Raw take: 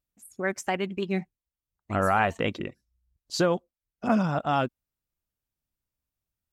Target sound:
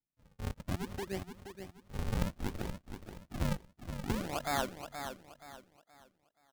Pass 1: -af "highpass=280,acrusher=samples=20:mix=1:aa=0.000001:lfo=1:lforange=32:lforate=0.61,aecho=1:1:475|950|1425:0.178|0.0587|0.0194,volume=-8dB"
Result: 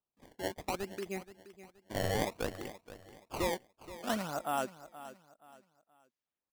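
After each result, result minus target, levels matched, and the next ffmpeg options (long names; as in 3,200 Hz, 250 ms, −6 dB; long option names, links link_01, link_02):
sample-and-hold swept by an LFO: distortion −11 dB; echo-to-direct −6.5 dB
-af "highpass=280,acrusher=samples=75:mix=1:aa=0.000001:lfo=1:lforange=120:lforate=0.61,aecho=1:1:475|950|1425:0.178|0.0587|0.0194,volume=-8dB"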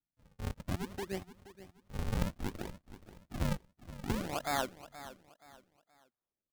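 echo-to-direct −6.5 dB
-af "highpass=280,acrusher=samples=75:mix=1:aa=0.000001:lfo=1:lforange=120:lforate=0.61,aecho=1:1:475|950|1425|1900:0.376|0.124|0.0409|0.0135,volume=-8dB"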